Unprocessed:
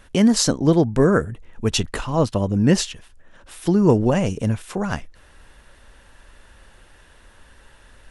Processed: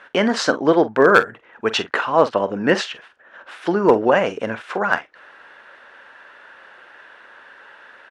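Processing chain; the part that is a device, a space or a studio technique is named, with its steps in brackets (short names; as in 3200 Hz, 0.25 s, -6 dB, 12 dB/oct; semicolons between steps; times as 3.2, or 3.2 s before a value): megaphone (BPF 500–2600 Hz; bell 1500 Hz +6 dB 0.48 oct; hard clip -11 dBFS, distortion -23 dB; doubler 45 ms -14 dB); gain +8 dB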